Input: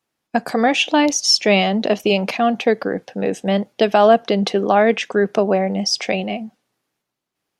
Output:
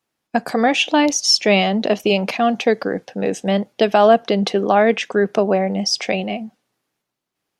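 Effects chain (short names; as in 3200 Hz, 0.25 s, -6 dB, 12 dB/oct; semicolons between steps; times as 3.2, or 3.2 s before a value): 2.37–3.51 dynamic EQ 6100 Hz, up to +5 dB, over -46 dBFS, Q 1.1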